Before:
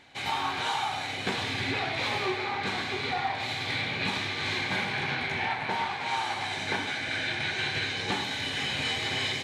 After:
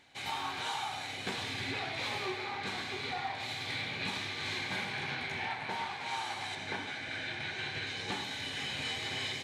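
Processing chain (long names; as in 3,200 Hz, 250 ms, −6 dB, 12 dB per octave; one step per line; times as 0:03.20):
high-shelf EQ 5,300 Hz +6.5 dB, from 0:06.55 −3 dB, from 0:07.87 +3.5 dB
level −7.5 dB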